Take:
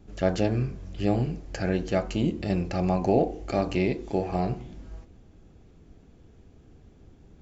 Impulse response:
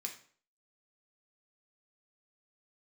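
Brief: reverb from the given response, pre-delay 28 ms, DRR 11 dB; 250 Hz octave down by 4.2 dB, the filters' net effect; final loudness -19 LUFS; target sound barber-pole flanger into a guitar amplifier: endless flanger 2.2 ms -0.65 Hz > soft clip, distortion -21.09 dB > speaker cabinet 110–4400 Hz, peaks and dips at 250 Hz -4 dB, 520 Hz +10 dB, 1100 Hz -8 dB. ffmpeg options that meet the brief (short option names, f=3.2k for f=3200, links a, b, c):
-filter_complex "[0:a]equalizer=f=250:t=o:g=-5,asplit=2[a][b];[1:a]atrim=start_sample=2205,adelay=28[c];[b][c]afir=irnorm=-1:irlink=0,volume=-9.5dB[d];[a][d]amix=inputs=2:normalize=0,asplit=2[e][f];[f]adelay=2.2,afreqshift=-0.65[g];[e][g]amix=inputs=2:normalize=1,asoftclip=threshold=-18dB,highpass=110,equalizer=f=250:t=q:w=4:g=-4,equalizer=f=520:t=q:w=4:g=10,equalizer=f=1.1k:t=q:w=4:g=-8,lowpass=f=4.4k:w=0.5412,lowpass=f=4.4k:w=1.3066,volume=11.5dB"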